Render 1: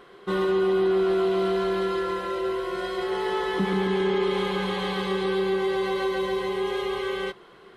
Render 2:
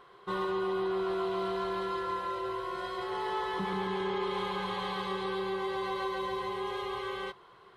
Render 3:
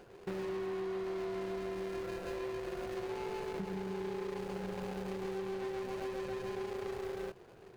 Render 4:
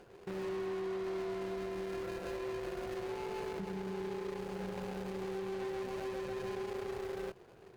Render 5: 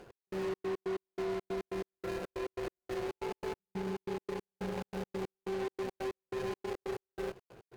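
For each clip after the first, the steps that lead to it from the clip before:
fifteen-band graphic EQ 100 Hz +9 dB, 250 Hz -7 dB, 1 kHz +9 dB, 4 kHz +3 dB; trim -9 dB
median filter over 41 samples; compression 6:1, threshold -44 dBFS, peak gain reduction 12 dB; trim +7 dB
peak limiter -34 dBFS, peak gain reduction 5 dB; Chebyshev shaper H 7 -28 dB, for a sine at -33.5 dBFS; trim +1 dB
trance gate "x..xx.x." 140 bpm -60 dB; trim +3.5 dB

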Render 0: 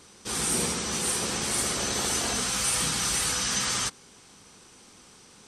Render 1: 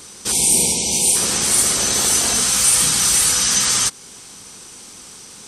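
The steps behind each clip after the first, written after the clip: spectral selection erased 0.32–1.15 s, 1–2.1 kHz; treble shelf 5.3 kHz +11.5 dB; in parallel at -1 dB: compression, threshold -30 dBFS, peak gain reduction 14 dB; on the sum: trim +3 dB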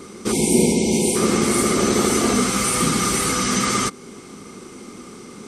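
treble shelf 2.1 kHz -9.5 dB; small resonant body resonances 240/360/1200/2100 Hz, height 13 dB, ringing for 25 ms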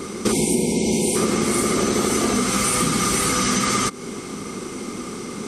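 compression 10:1, threshold -24 dBFS, peak gain reduction 13.5 dB; trim +7.5 dB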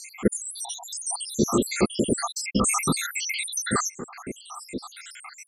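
random holes in the spectrogram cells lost 84%; trim +2.5 dB

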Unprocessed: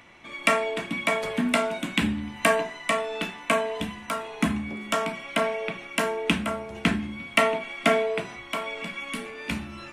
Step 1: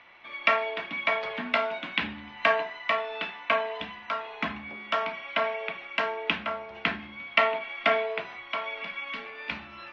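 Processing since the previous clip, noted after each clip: steep low-pass 5.3 kHz 36 dB/octave; three-band isolator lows -14 dB, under 540 Hz, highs -13 dB, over 4.2 kHz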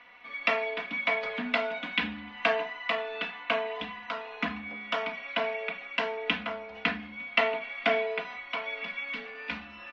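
comb 4.1 ms, depth 88%; trim -3 dB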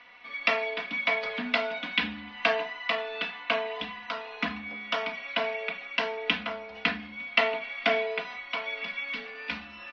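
resonant low-pass 5.2 kHz, resonance Q 2.1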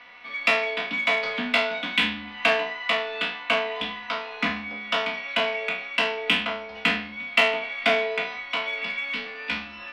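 spectral sustain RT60 0.46 s; in parallel at -5.5 dB: saturation -23 dBFS, distortion -9 dB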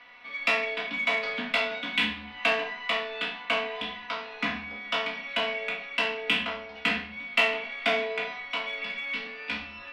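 reverberation RT60 0.55 s, pre-delay 7 ms, DRR 7 dB; trim -4.5 dB

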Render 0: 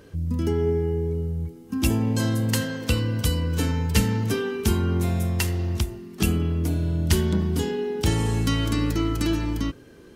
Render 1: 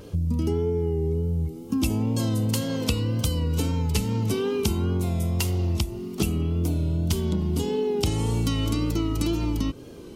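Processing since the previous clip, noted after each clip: peaking EQ 1.7 kHz -14.5 dB 0.41 oct; compression, threshold -28 dBFS, peak gain reduction 13.5 dB; wow and flutter 54 cents; trim +6.5 dB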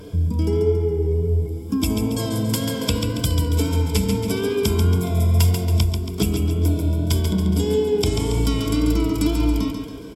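rippled EQ curve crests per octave 1.7, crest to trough 11 dB; on a send: feedback delay 139 ms, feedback 47%, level -6 dB; on the sum: trim +2 dB

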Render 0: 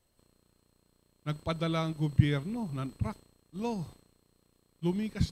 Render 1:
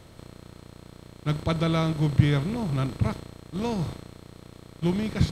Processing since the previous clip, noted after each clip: spectral levelling over time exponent 0.6; trim +3 dB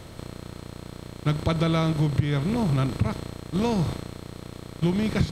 compression 5:1, threshold -27 dBFS, peak gain reduction 14.5 dB; trim +7 dB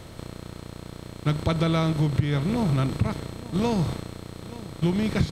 delay 876 ms -18 dB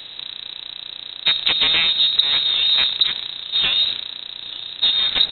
self-modulated delay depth 0.99 ms; frequency inversion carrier 3.9 kHz; trim +5.5 dB

